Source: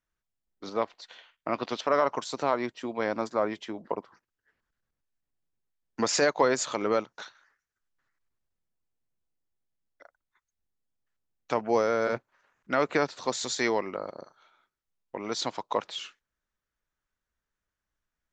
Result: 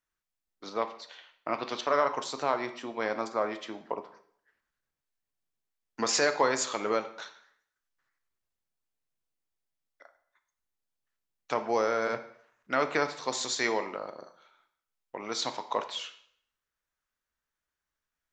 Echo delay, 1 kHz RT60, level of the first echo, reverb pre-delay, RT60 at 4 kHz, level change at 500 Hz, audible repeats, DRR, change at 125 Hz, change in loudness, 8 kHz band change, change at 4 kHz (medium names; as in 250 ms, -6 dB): no echo, 0.60 s, no echo, 7 ms, 0.55 s, -3.0 dB, no echo, 8.0 dB, -5.5 dB, -1.5 dB, 0.0 dB, +0.5 dB